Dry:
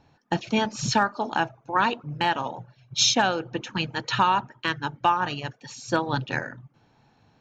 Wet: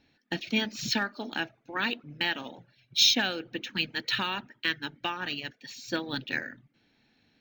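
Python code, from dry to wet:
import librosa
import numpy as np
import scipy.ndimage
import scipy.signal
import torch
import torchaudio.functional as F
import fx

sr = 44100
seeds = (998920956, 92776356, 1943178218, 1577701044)

y = fx.graphic_eq(x, sr, hz=(125, 250, 1000, 2000, 4000), db=(-8, 7, -11, 10, 9))
y = np.interp(np.arange(len(y)), np.arange(len(y))[::2], y[::2])
y = F.gain(torch.from_numpy(y), -8.0).numpy()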